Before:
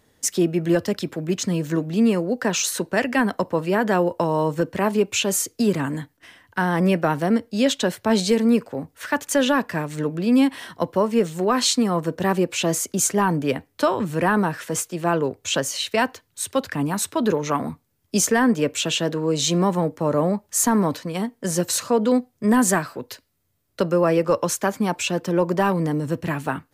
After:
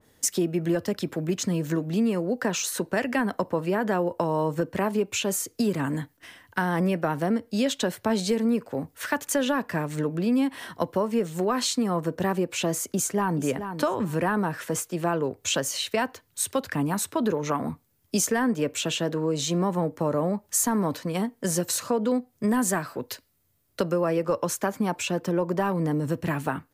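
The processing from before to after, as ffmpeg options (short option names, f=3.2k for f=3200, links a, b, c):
-filter_complex "[0:a]asplit=2[a][b];[b]afade=t=in:st=12.88:d=0.01,afade=t=out:st=13.4:d=0.01,aecho=0:1:430|860:0.211349|0.0422698[c];[a][c]amix=inputs=2:normalize=0,highshelf=f=10k:g=6.5,acompressor=threshold=-23dB:ratio=2.5,adynamicequalizer=threshold=0.00794:dfrequency=2200:dqfactor=0.7:tfrequency=2200:tqfactor=0.7:attack=5:release=100:ratio=0.375:range=2.5:mode=cutabove:tftype=highshelf"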